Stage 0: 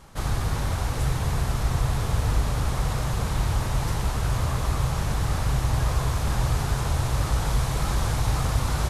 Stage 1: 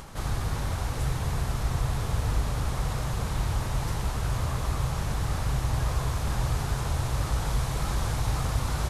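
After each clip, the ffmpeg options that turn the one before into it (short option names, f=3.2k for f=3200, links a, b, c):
-af "acompressor=mode=upward:threshold=-31dB:ratio=2.5,volume=-3.5dB"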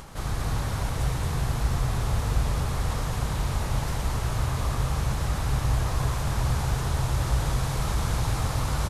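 -af "aecho=1:1:119.5|227.4:0.355|0.631"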